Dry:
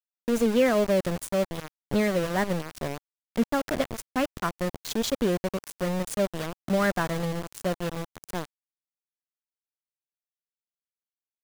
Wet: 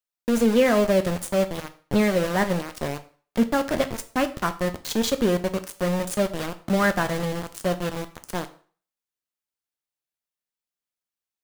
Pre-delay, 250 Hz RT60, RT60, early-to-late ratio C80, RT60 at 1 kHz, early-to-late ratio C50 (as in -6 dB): 4 ms, 0.40 s, 0.45 s, 19.0 dB, 0.45 s, 15.5 dB